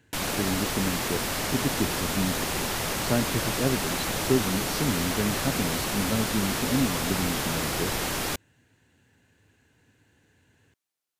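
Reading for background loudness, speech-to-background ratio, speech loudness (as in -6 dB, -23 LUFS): -28.0 LUFS, -2.5 dB, -30.5 LUFS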